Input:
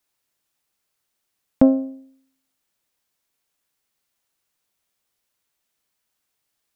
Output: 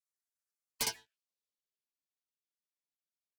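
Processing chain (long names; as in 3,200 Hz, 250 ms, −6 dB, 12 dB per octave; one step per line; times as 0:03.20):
phase distortion by the signal itself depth 0.74 ms
elliptic band-stop filter 240–510 Hz
single-tap delay 119 ms −4 dB
frequency shifter +65 Hz
band-pass filter sweep 1,500 Hz → 500 Hz, 0:01.02–0:03.84
in parallel at −10 dB: sine wavefolder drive 17 dB, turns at −13 dBFS
on the sum: leveller curve on the samples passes 2
gate on every frequency bin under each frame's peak −15 dB weak
wrong playback speed 7.5 ips tape played at 15 ips
phaser whose notches keep moving one way falling 1.5 Hz
level −6.5 dB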